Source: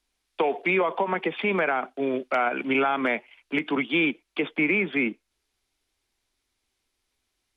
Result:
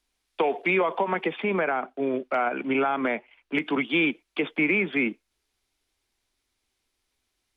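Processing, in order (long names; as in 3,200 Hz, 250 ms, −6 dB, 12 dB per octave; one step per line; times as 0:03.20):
0:01.36–0:03.55: high-shelf EQ 3,100 Hz −11 dB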